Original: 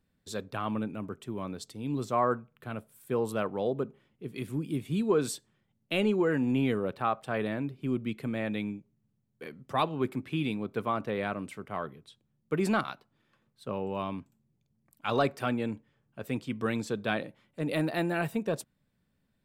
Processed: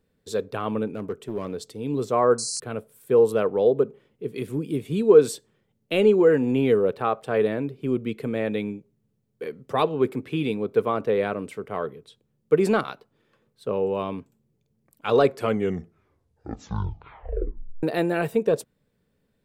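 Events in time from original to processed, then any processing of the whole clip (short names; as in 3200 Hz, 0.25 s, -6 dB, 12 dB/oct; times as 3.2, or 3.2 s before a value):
0.87–1.84 overloaded stage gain 30.5 dB
2.38–2.6 painted sound noise 4000–10000 Hz -33 dBFS
15.25 tape stop 2.58 s
whole clip: bell 450 Hz +12 dB 0.5 oct; gain +3 dB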